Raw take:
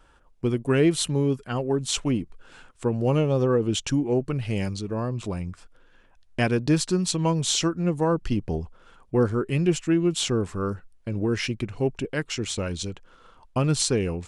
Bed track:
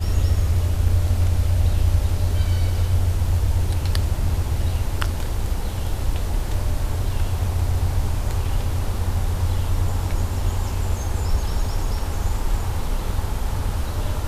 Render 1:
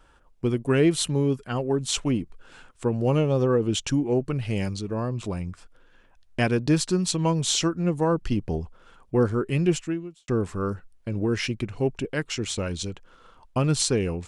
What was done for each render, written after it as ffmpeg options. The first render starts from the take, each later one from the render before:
-filter_complex "[0:a]asplit=2[s0][s1];[s0]atrim=end=10.28,asetpts=PTS-STARTPTS,afade=t=out:st=9.76:d=0.52:c=qua[s2];[s1]atrim=start=10.28,asetpts=PTS-STARTPTS,afade=t=in:d=0.004:c=hsin[s3];[s2][s3]concat=n=2:v=0:a=1"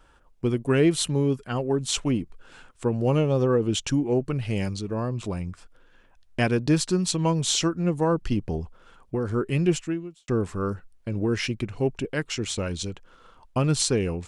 -filter_complex "[0:a]asettb=1/sr,asplit=3[s0][s1][s2];[s0]atrim=end=8.474[s3];[s1]atrim=start=8.47:end=9.33,asetpts=PTS-STARTPTS,afade=t=in:d=0.004:c=qsin,afade=t=out:st=0.856:d=0.004:c=qsin,acompressor=threshold=0.0794:ratio=6:attack=3.2:release=140:knee=1:detection=peak[s4];[s2]atrim=start=9.326[s5];[s3][s4]acrossfade=d=0.004:c1=hsin:c2=qsin[s6];[s6][s5]acrossfade=d=0.004:c1=qsin:c2=hsin"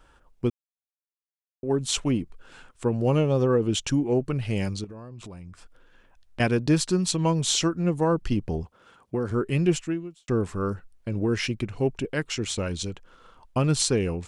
-filter_complex "[0:a]asettb=1/sr,asplit=3[s0][s1][s2];[s0]atrim=end=4.844[s3];[s1]atrim=start=4.84:end=6.4,asetpts=PTS-STARTPTS,afade=t=in:d=0.004:c=qsin,afade=t=out:st=1.556:d=0.004:c=qsin,acompressor=threshold=0.0141:ratio=10:attack=3.2:release=140:knee=1:detection=peak[s4];[s2]atrim=start=6.396[s5];[s3][s4]acrossfade=d=0.004:c1=hsin:c2=qsin[s6];[s6][s5]acrossfade=d=0.004:c1=qsin:c2=hsin,asettb=1/sr,asplit=3[s7][s8][s9];[s7]atrim=end=8.634[s10];[s8]atrim=start=8.63:end=9.31,asetpts=PTS-STARTPTS,afade=t=in:d=0.004:c=qsin,afade=t=out:st=0.676:d=0.004:c=qsin,highpass=100[s11];[s9]atrim=start=9.306[s12];[s10][s11]acrossfade=d=0.004:c1=hsin:c2=qsin[s13];[s13][s12]acrossfade=d=0.004:c1=qsin:c2=hsin,asplit=3[s14][s15][s16];[s14]atrim=end=0.5,asetpts=PTS-STARTPTS,afade=t=out:st=0.496:d=0.004:c=hsin[s17];[s15]atrim=start=0.5:end=1.63,asetpts=PTS-STARTPTS,volume=0[s18];[s16]atrim=start=1.63,asetpts=PTS-STARTPTS,afade=t=in:d=0.004:c=hsin[s19];[s17][s18][s19]concat=n=3:v=0:a=1"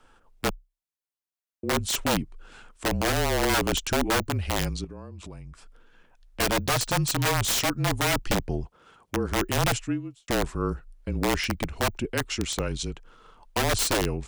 -af "aeval=exprs='(mod(7.94*val(0)+1,2)-1)/7.94':c=same,afreqshift=-32"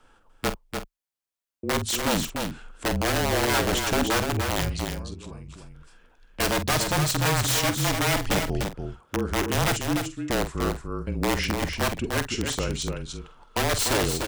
-filter_complex "[0:a]asplit=2[s0][s1];[s1]adelay=47,volume=0.282[s2];[s0][s2]amix=inputs=2:normalize=0,asplit=2[s3][s4];[s4]aecho=0:1:295:0.531[s5];[s3][s5]amix=inputs=2:normalize=0"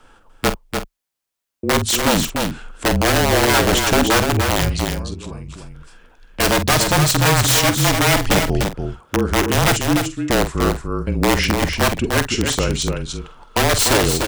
-af "volume=2.66,alimiter=limit=0.794:level=0:latency=1"

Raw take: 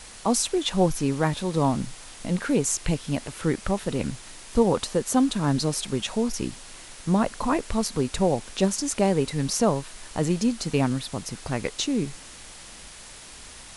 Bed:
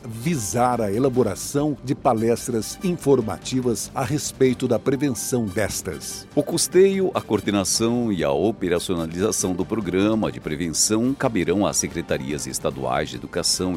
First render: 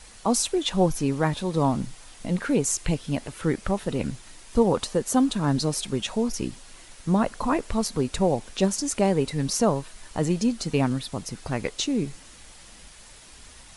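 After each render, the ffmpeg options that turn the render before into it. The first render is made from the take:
-af "afftdn=nr=6:nf=-44"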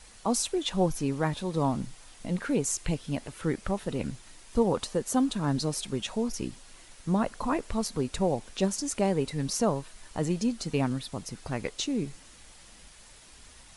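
-af "volume=0.596"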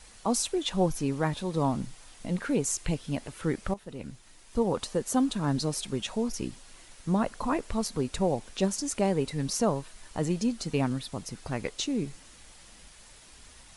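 -filter_complex "[0:a]asplit=2[s0][s1];[s0]atrim=end=3.74,asetpts=PTS-STARTPTS,afade=t=out:st=3.736:d=0.004:c=hsin:silence=0.237137[s2];[s1]atrim=start=3.74,asetpts=PTS-STARTPTS,afade=t=in:d=1.24:silence=0.237137[s3];[s2][s3]concat=n=2:v=0:a=1"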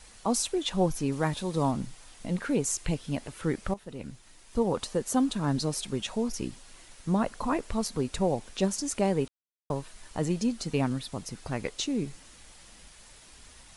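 -filter_complex "[0:a]asettb=1/sr,asplit=3[s0][s1][s2];[s0]atrim=end=1.124[s3];[s1]atrim=start=1.12:end=1.71,asetpts=PTS-STARTPTS,afade=t=in:d=0.004:c=qsin,afade=t=out:st=0.586:d=0.004:c=qsin,highshelf=f=4700:g=5[s4];[s2]atrim=start=1.706[s5];[s3][s4]acrossfade=d=0.004:c1=hsin:c2=qsin[s6];[s6][s5]acrossfade=d=0.004:c1=qsin:c2=hsin,asplit=3[s7][s8][s9];[s7]atrim=end=9.28,asetpts=PTS-STARTPTS,afade=t=out:st=9.276:d=0.004:c=hsin[s10];[s8]atrim=start=9.28:end=9.7,asetpts=PTS-STARTPTS,volume=0[s11];[s9]atrim=start=9.7,asetpts=PTS-STARTPTS,afade=t=in:d=0.004:c=hsin[s12];[s10][s11][s12]concat=n=3:v=0:a=1"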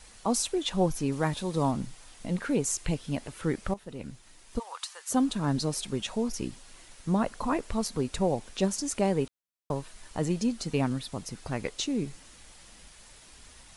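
-filter_complex "[0:a]asplit=3[s0][s1][s2];[s0]afade=t=out:st=4.58:d=0.02[s3];[s1]highpass=f=1000:w=0.5412,highpass=f=1000:w=1.3066,afade=t=in:st=4.58:d=0.02,afade=t=out:st=5.09:d=0.02[s4];[s2]afade=t=in:st=5.09:d=0.02[s5];[s3][s4][s5]amix=inputs=3:normalize=0"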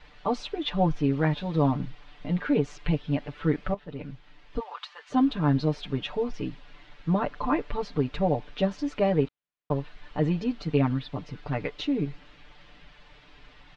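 -af "lowpass=f=3500:w=0.5412,lowpass=f=3500:w=1.3066,aecho=1:1:6.8:0.91"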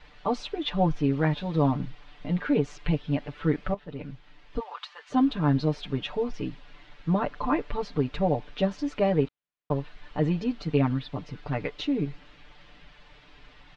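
-af anull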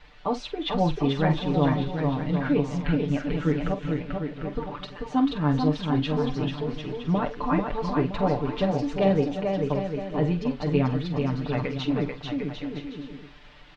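-filter_complex "[0:a]asplit=2[s0][s1];[s1]adelay=46,volume=0.251[s2];[s0][s2]amix=inputs=2:normalize=0,aecho=1:1:440|748|963.6|1115|1220:0.631|0.398|0.251|0.158|0.1"

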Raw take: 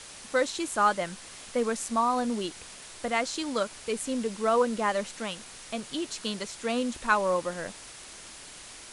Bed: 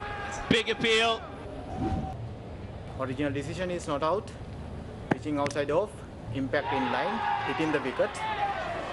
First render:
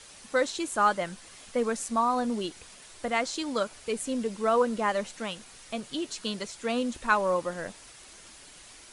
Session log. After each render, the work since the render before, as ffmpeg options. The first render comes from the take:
-af "afftdn=nr=6:nf=-46"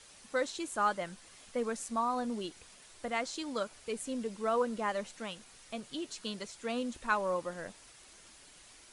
-af "volume=0.473"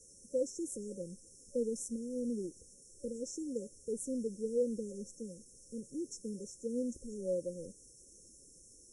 -af "afftfilt=real='re*(1-between(b*sr/4096,560,5300))':imag='im*(1-between(b*sr/4096,560,5300))':win_size=4096:overlap=0.75"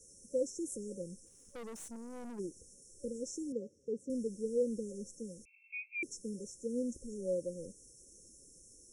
-filter_complex "[0:a]asplit=3[s0][s1][s2];[s0]afade=t=out:st=1.25:d=0.02[s3];[s1]aeval=exprs='(tanh(158*val(0)+0.55)-tanh(0.55))/158':c=same,afade=t=in:st=1.25:d=0.02,afade=t=out:st=2.38:d=0.02[s4];[s2]afade=t=in:st=2.38:d=0.02[s5];[s3][s4][s5]amix=inputs=3:normalize=0,asettb=1/sr,asplit=3[s6][s7][s8];[s6]atrim=end=3.524[s9];[s7]atrim=start=3.52:end=4.1,asetpts=PTS-STARTPTS,afade=t=in:d=0.004:c=qsin,afade=t=out:st=0.576:d=0.004:c=qsin,highpass=120,lowpass=3000[s10];[s8]atrim=start=4.096[s11];[s9][s10]acrossfade=d=0.004:c1=hsin:c2=qsin[s12];[s12][s11]acrossfade=d=0.004:c1=qsin:c2=hsin,asettb=1/sr,asplit=3[s13][s14][s15];[s13]atrim=end=5.454[s16];[s14]atrim=start=5.45:end=6.03,asetpts=PTS-STARTPTS,afade=t=in:d=0.004:c=qsin,afade=t=out:st=0.576:d=0.004:c=qsin,lowpass=f=2300:t=q:w=0.5098,lowpass=f=2300:t=q:w=0.6013,lowpass=f=2300:t=q:w=0.9,lowpass=f=2300:t=q:w=2.563,afreqshift=-2700[s17];[s15]atrim=start=6.026[s18];[s16][s17]acrossfade=d=0.004:c1=hsin:c2=qsin[s19];[s19][s18]acrossfade=d=0.004:c1=qsin:c2=hsin"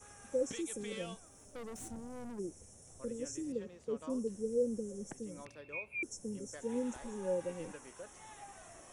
-filter_complex "[1:a]volume=0.0708[s0];[0:a][s0]amix=inputs=2:normalize=0"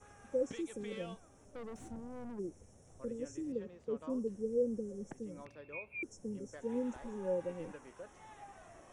-af "aemphasis=mode=reproduction:type=75kf"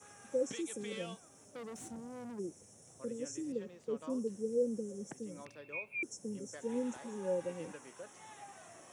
-af "highpass=f=110:w=0.5412,highpass=f=110:w=1.3066,highshelf=f=3300:g=11.5"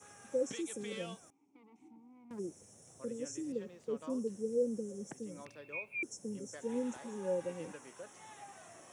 -filter_complex "[0:a]asettb=1/sr,asplit=3[s0][s1][s2];[s0]atrim=end=1.304[s3];[s1]atrim=start=1.3:end=2.31,asetpts=PTS-STARTPTS,afade=t=in:d=0.004:c=qsin,afade=t=out:st=1.006:d=0.004:c=qsin,asplit=3[s4][s5][s6];[s4]bandpass=f=300:t=q:w=8,volume=1[s7];[s5]bandpass=f=870:t=q:w=8,volume=0.501[s8];[s6]bandpass=f=2240:t=q:w=8,volume=0.355[s9];[s7][s8][s9]amix=inputs=3:normalize=0[s10];[s2]atrim=start=2.306[s11];[s3][s10]acrossfade=d=0.004:c1=hsin:c2=qsin[s12];[s12][s11]acrossfade=d=0.004:c1=qsin:c2=hsin"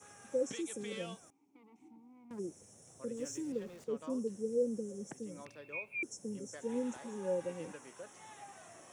-filter_complex "[0:a]asettb=1/sr,asplit=3[s0][s1][s2];[s0]atrim=end=3.174[s3];[s1]atrim=start=3.17:end=3.84,asetpts=PTS-STARTPTS,afade=t=in:d=0.004:c=qsin,afade=t=out:st=0.666:d=0.004:c=qsin,aeval=exprs='val(0)+0.5*0.00188*sgn(val(0))':c=same[s4];[s2]atrim=start=3.836[s5];[s3][s4]acrossfade=d=0.004:c1=hsin:c2=qsin[s6];[s6][s5]acrossfade=d=0.004:c1=qsin:c2=hsin"

